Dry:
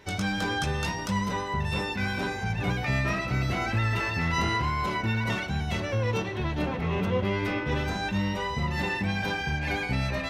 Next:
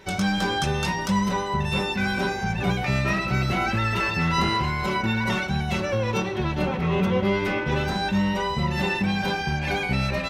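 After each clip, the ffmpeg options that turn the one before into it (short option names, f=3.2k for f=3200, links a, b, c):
-af "aecho=1:1:5.3:0.49,volume=3.5dB"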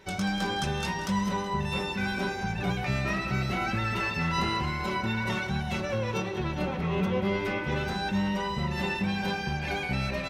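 -af "aecho=1:1:186|372|558|744|930|1116:0.224|0.125|0.0702|0.0393|0.022|0.0123,volume=-5.5dB"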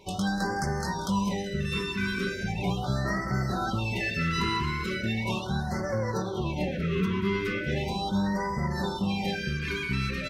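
-af "afftfilt=real='re*(1-between(b*sr/1024,650*pow(3100/650,0.5+0.5*sin(2*PI*0.38*pts/sr))/1.41,650*pow(3100/650,0.5+0.5*sin(2*PI*0.38*pts/sr))*1.41))':imag='im*(1-between(b*sr/1024,650*pow(3100/650,0.5+0.5*sin(2*PI*0.38*pts/sr))/1.41,650*pow(3100/650,0.5+0.5*sin(2*PI*0.38*pts/sr))*1.41))':win_size=1024:overlap=0.75,volume=1dB"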